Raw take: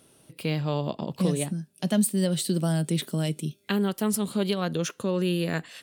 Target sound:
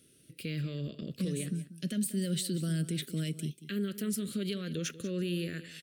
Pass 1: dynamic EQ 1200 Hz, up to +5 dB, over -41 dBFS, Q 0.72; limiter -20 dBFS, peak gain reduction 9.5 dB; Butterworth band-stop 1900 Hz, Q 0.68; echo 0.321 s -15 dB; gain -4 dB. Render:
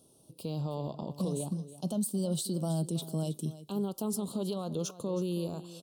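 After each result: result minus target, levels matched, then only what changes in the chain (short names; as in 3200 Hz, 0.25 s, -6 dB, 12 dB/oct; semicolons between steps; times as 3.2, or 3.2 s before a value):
2000 Hz band -17.0 dB; echo 0.132 s late
change: Butterworth band-stop 870 Hz, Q 0.68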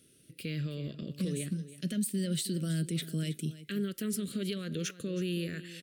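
echo 0.132 s late
change: echo 0.189 s -15 dB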